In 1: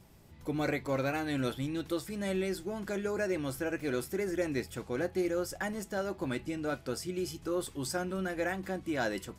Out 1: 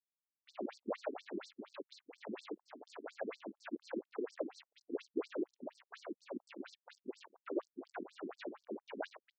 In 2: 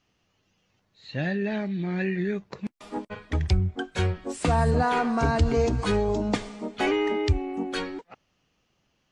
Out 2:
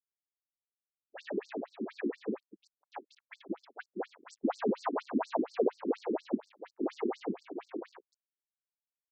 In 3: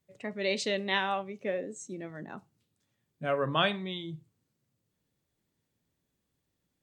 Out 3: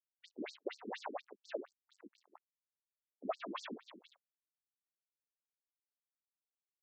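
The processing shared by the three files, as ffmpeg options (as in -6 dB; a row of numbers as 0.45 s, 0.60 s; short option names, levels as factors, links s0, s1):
-filter_complex "[0:a]equalizer=f=6700:t=o:w=0.32:g=-14,afftfilt=real='hypot(re,im)*cos(2*PI*random(0))':imag='hypot(re,im)*sin(2*PI*random(1))':win_size=512:overlap=0.75,aecho=1:1:141:0.0944,acrossover=split=1200[s0][s1];[s1]acompressor=threshold=0.00251:ratio=5[s2];[s0][s2]amix=inputs=2:normalize=0,aeval=exprs='sgn(val(0))*max(abs(val(0))-0.00631,0)':c=same,afftfilt=real='re*between(b*sr/1024,270*pow(6100/270,0.5+0.5*sin(2*PI*4.2*pts/sr))/1.41,270*pow(6100/270,0.5+0.5*sin(2*PI*4.2*pts/sr))*1.41)':imag='im*between(b*sr/1024,270*pow(6100/270,0.5+0.5*sin(2*PI*4.2*pts/sr))/1.41,270*pow(6100/270,0.5+0.5*sin(2*PI*4.2*pts/sr))*1.41)':win_size=1024:overlap=0.75,volume=2.37"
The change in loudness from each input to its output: -11.5 LU, -10.0 LU, -14.0 LU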